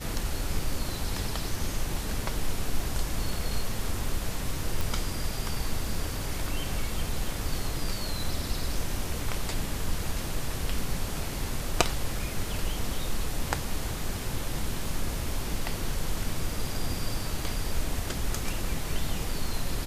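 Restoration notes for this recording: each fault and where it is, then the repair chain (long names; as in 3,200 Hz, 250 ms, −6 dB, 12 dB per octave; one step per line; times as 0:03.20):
0:04.81: click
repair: click removal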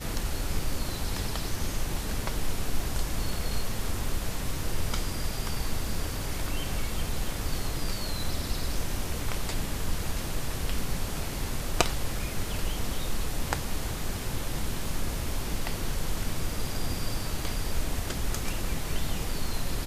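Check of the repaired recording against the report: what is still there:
none of them is left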